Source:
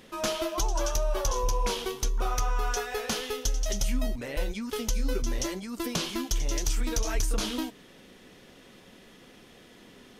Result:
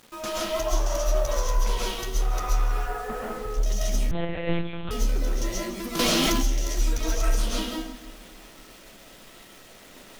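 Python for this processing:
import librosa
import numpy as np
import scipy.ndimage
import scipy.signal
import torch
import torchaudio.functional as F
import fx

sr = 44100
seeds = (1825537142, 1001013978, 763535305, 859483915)

y = fx.lowpass(x, sr, hz=1600.0, slope=24, at=(2.72, 3.51))
y = fx.quant_dither(y, sr, seeds[0], bits=8, dither='none')
y = 10.0 ** (-26.0 / 20.0) * np.tanh(y / 10.0 ** (-26.0 / 20.0))
y = fx.echo_split(y, sr, split_hz=310.0, low_ms=264, high_ms=157, feedback_pct=52, wet_db=-15.5)
y = fx.rev_freeverb(y, sr, rt60_s=0.49, hf_ratio=0.5, predelay_ms=90, drr_db=-5.5)
y = fx.lpc_monotone(y, sr, seeds[1], pitch_hz=170.0, order=8, at=(4.11, 4.91))
y = fx.env_flatten(y, sr, amount_pct=100, at=(5.99, 6.45))
y = F.gain(torch.from_numpy(y), -2.0).numpy()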